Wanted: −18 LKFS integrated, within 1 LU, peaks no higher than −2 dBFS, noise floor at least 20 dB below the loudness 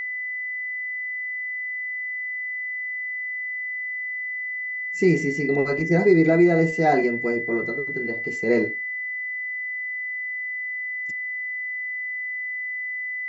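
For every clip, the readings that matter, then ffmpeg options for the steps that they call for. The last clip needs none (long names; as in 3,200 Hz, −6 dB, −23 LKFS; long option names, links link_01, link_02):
interfering tone 2,000 Hz; level of the tone −27 dBFS; integrated loudness −24.5 LKFS; sample peak −6.5 dBFS; target loudness −18.0 LKFS
→ -af "bandreject=frequency=2000:width=30"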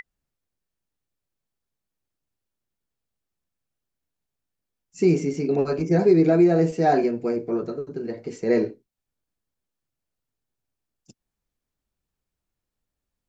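interfering tone none found; integrated loudness −22.0 LKFS; sample peak −7.0 dBFS; target loudness −18.0 LKFS
→ -af "volume=4dB"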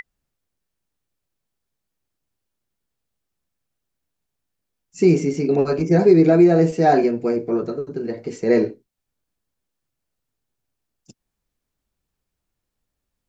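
integrated loudness −18.0 LKFS; sample peak −3.0 dBFS; background noise floor −81 dBFS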